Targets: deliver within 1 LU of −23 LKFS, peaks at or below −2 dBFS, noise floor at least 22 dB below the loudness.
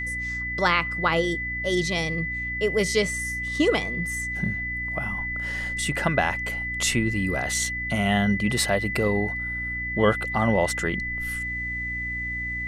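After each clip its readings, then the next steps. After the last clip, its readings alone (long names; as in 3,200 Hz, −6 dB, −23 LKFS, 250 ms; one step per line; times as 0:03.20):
mains hum 60 Hz; hum harmonics up to 300 Hz; level of the hum −34 dBFS; interfering tone 2,000 Hz; level of the tone −28 dBFS; integrated loudness −25.0 LKFS; sample peak −7.5 dBFS; target loudness −23.0 LKFS
→ mains-hum notches 60/120/180/240/300 Hz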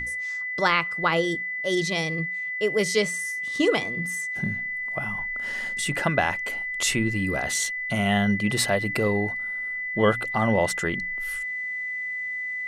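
mains hum none found; interfering tone 2,000 Hz; level of the tone −28 dBFS
→ notch filter 2,000 Hz, Q 30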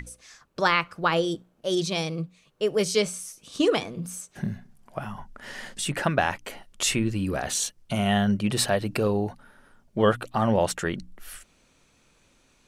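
interfering tone none found; integrated loudness −26.0 LKFS; sample peak −8.0 dBFS; target loudness −23.0 LKFS
→ level +3 dB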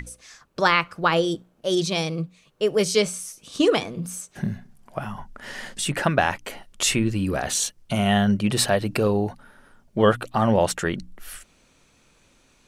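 integrated loudness −23.0 LKFS; sample peak −5.0 dBFS; background noise floor −60 dBFS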